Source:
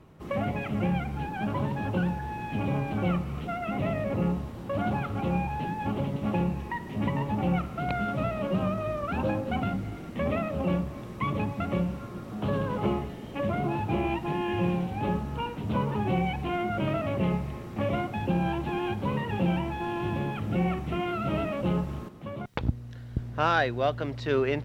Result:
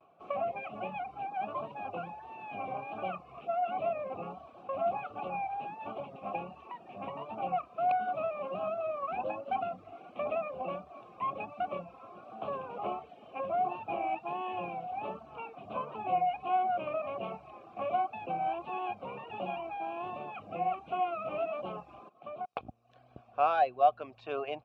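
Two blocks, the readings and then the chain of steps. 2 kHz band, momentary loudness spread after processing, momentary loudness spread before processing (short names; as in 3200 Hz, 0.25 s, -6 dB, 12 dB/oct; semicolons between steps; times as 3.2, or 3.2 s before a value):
-9.0 dB, 13 LU, 6 LU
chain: vibrato 1.4 Hz 85 cents; vowel filter a; reverb removal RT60 0.57 s; gain +6.5 dB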